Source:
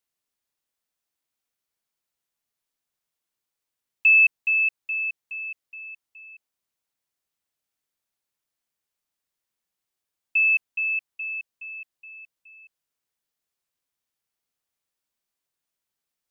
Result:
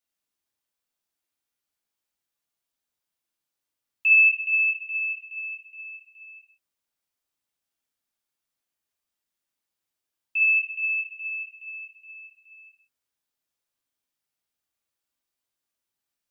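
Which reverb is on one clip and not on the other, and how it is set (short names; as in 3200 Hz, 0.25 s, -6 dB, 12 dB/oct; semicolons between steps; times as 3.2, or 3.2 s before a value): non-linear reverb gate 0.23 s falling, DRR -1.5 dB; gain -4.5 dB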